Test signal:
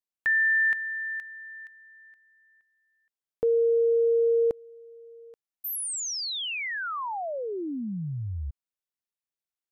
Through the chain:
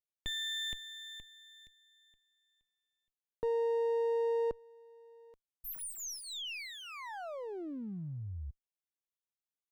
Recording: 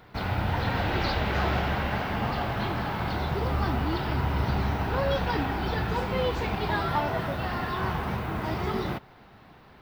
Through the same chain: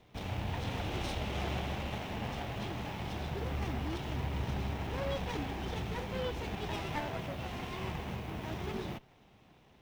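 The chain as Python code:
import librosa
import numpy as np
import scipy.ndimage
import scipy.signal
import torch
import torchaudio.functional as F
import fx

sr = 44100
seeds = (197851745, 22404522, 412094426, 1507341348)

y = fx.lower_of_two(x, sr, delay_ms=0.32)
y = y * librosa.db_to_amplitude(-8.5)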